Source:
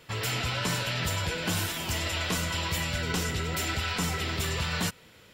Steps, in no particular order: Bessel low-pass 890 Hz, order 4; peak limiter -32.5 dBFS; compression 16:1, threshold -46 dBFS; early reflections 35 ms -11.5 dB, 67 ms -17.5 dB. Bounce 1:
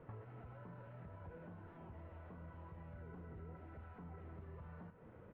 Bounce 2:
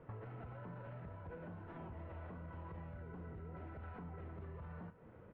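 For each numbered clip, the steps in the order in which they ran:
peak limiter > early reflections > compression > Bessel low-pass; Bessel low-pass > peak limiter > compression > early reflections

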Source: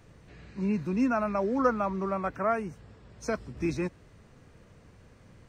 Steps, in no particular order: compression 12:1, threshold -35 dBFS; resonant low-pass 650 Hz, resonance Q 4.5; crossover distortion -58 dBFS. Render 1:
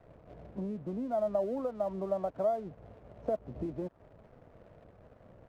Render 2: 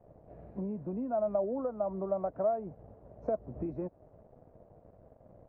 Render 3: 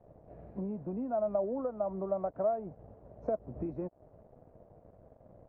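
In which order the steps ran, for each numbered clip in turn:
compression > resonant low-pass > crossover distortion; crossover distortion > compression > resonant low-pass; compression > crossover distortion > resonant low-pass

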